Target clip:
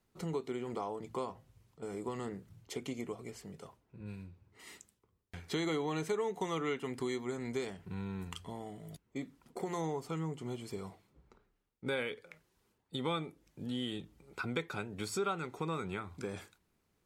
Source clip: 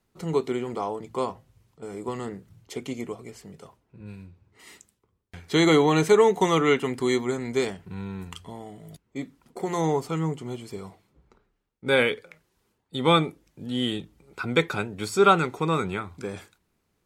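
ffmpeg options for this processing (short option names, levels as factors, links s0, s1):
-af "acompressor=threshold=0.0251:ratio=3,volume=0.631"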